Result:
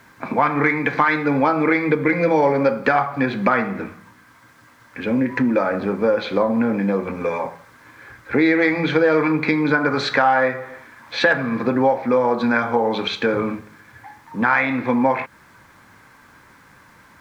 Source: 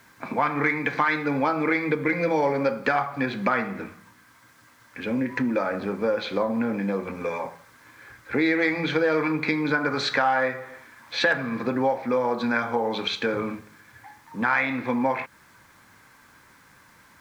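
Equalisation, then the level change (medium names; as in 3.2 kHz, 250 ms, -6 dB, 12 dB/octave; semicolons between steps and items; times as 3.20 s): treble shelf 2.9 kHz -7 dB; +6.5 dB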